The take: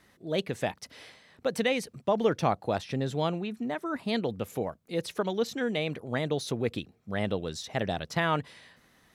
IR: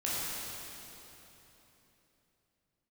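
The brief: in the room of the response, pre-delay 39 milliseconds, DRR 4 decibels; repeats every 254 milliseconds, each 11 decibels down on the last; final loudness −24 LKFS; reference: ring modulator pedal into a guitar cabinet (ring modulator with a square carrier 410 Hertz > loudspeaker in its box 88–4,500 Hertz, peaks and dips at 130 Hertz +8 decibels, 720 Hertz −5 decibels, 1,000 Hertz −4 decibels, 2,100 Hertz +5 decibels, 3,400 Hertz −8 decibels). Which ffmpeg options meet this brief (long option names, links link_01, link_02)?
-filter_complex "[0:a]aecho=1:1:254|508|762:0.282|0.0789|0.0221,asplit=2[link_01][link_02];[1:a]atrim=start_sample=2205,adelay=39[link_03];[link_02][link_03]afir=irnorm=-1:irlink=0,volume=-11dB[link_04];[link_01][link_04]amix=inputs=2:normalize=0,aeval=exprs='val(0)*sgn(sin(2*PI*410*n/s))':channel_layout=same,highpass=88,equalizer=frequency=130:width_type=q:width=4:gain=8,equalizer=frequency=720:width_type=q:width=4:gain=-5,equalizer=frequency=1000:width_type=q:width=4:gain=-4,equalizer=frequency=2100:width_type=q:width=4:gain=5,equalizer=frequency=3400:width_type=q:width=4:gain=-8,lowpass=frequency=4500:width=0.5412,lowpass=frequency=4500:width=1.3066,volume=6dB"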